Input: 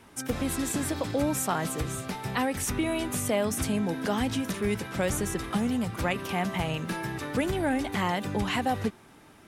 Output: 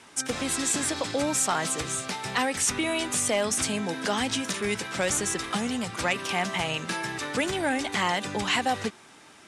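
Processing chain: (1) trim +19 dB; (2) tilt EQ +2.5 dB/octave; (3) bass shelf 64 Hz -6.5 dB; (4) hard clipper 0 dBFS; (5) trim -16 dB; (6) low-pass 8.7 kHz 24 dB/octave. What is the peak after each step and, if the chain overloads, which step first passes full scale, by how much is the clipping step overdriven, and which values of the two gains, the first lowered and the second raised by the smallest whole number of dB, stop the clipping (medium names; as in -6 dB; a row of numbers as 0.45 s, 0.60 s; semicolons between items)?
+5.0 dBFS, +8.0 dBFS, +8.0 dBFS, 0.0 dBFS, -16.0 dBFS, -14.5 dBFS; step 1, 8.0 dB; step 1 +11 dB, step 5 -8 dB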